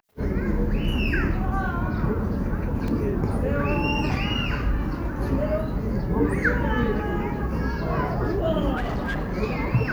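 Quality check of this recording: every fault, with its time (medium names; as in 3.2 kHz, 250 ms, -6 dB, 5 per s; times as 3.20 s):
2.88 s: dropout 2.6 ms
8.76–9.38 s: clipped -23 dBFS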